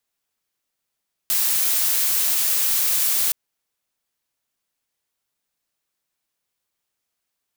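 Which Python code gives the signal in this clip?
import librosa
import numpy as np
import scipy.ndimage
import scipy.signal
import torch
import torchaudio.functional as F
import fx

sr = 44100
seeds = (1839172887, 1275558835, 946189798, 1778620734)

y = fx.noise_colour(sr, seeds[0], length_s=2.02, colour='blue', level_db=-20.0)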